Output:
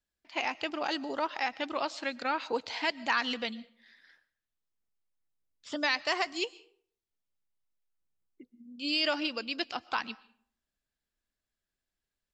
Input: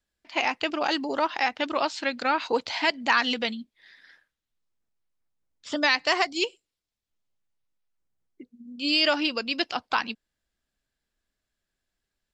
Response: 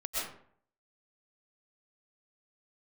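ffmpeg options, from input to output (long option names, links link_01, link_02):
-filter_complex "[0:a]asplit=2[link_01][link_02];[1:a]atrim=start_sample=2205,highshelf=frequency=6100:gain=9.5[link_03];[link_02][link_03]afir=irnorm=-1:irlink=0,volume=-26dB[link_04];[link_01][link_04]amix=inputs=2:normalize=0,volume=-7dB"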